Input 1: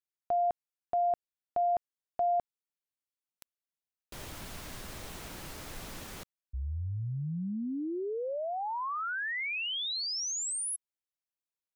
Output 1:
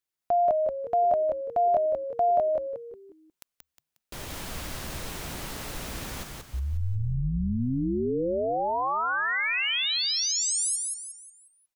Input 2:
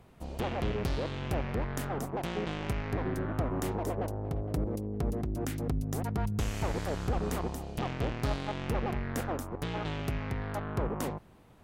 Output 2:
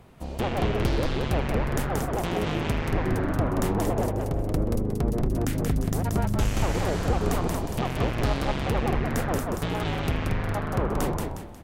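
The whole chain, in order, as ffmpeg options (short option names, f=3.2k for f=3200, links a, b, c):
-filter_complex "[0:a]asplit=6[a][b][c][d][e][f];[b]adelay=180,afreqshift=-77,volume=-3dB[g];[c]adelay=360,afreqshift=-154,volume=-11.2dB[h];[d]adelay=540,afreqshift=-231,volume=-19.4dB[i];[e]adelay=720,afreqshift=-308,volume=-27.5dB[j];[f]adelay=900,afreqshift=-385,volume=-35.7dB[k];[a][g][h][i][j][k]amix=inputs=6:normalize=0,volume=5.5dB"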